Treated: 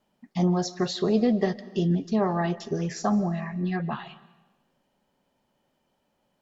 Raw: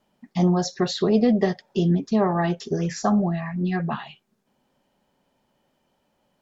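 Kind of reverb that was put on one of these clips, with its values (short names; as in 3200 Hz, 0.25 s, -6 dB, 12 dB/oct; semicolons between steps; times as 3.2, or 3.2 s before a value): digital reverb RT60 1.1 s, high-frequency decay 0.95×, pre-delay 0.11 s, DRR 18 dB; gain -3.5 dB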